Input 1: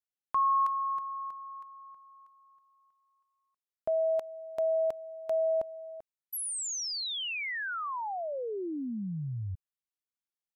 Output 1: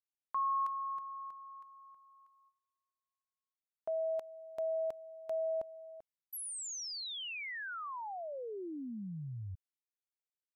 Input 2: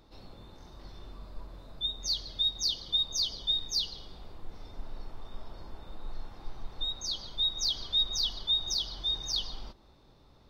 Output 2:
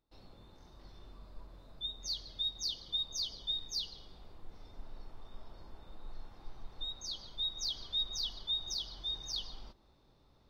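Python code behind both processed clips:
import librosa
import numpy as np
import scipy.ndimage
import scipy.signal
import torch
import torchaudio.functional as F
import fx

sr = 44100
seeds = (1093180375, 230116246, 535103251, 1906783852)

y = fx.gate_hold(x, sr, open_db=-50.0, close_db=-54.0, hold_ms=212.0, range_db=-17, attack_ms=0.52, release_ms=50.0)
y = y * 10.0 ** (-7.0 / 20.0)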